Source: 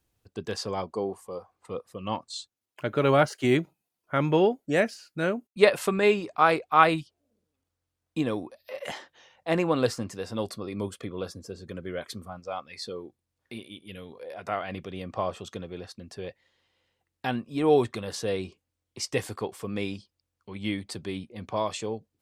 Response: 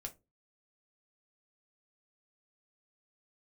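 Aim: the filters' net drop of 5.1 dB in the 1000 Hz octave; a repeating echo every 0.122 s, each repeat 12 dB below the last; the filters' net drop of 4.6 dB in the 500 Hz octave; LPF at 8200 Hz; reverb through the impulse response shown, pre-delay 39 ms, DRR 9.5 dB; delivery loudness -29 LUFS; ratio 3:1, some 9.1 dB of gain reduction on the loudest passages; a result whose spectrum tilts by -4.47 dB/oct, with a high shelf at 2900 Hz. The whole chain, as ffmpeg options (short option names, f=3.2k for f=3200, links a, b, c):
-filter_complex "[0:a]lowpass=8.2k,equalizer=f=500:t=o:g=-4.5,equalizer=f=1k:t=o:g=-6.5,highshelf=f=2.9k:g=5,acompressor=threshold=-29dB:ratio=3,aecho=1:1:122|244|366:0.251|0.0628|0.0157,asplit=2[a][b];[1:a]atrim=start_sample=2205,adelay=39[c];[b][c]afir=irnorm=-1:irlink=0,volume=-6dB[d];[a][d]amix=inputs=2:normalize=0,volume=6dB"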